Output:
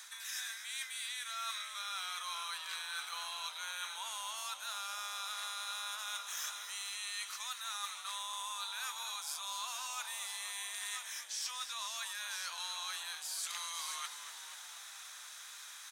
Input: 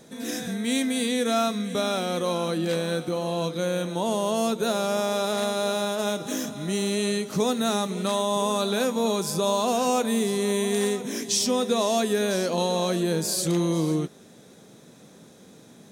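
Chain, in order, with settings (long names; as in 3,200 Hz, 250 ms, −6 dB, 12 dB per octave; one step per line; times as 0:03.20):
Butterworth high-pass 1,100 Hz 36 dB per octave
reversed playback
downward compressor 12 to 1, threshold −46 dBFS, peak gain reduction 25 dB
reversed playback
echo with shifted repeats 242 ms, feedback 63%, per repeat −69 Hz, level −11 dB
level +7.5 dB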